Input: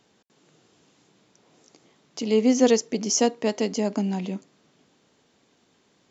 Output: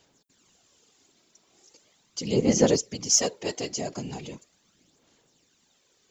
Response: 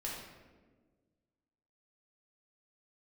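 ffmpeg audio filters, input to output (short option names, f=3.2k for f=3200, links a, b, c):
-af "crystalizer=i=3.5:c=0,aphaser=in_gain=1:out_gain=1:delay=3.1:decay=0.51:speed=0.39:type=sinusoidal,afftfilt=real='hypot(re,im)*cos(2*PI*random(0))':imag='hypot(re,im)*sin(2*PI*random(1))':win_size=512:overlap=0.75,volume=-2.5dB"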